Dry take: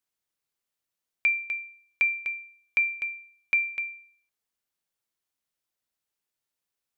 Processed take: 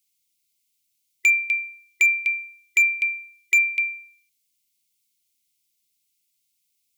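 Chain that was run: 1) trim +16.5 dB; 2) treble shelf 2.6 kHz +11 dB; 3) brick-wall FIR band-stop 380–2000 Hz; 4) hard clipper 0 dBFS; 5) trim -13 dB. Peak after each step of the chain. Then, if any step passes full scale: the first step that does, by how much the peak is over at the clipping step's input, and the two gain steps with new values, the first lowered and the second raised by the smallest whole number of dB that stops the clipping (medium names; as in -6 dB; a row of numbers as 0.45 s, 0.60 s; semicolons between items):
+1.5 dBFS, +6.0 dBFS, +6.5 dBFS, 0.0 dBFS, -13.0 dBFS; step 1, 6.5 dB; step 1 +9.5 dB, step 5 -6 dB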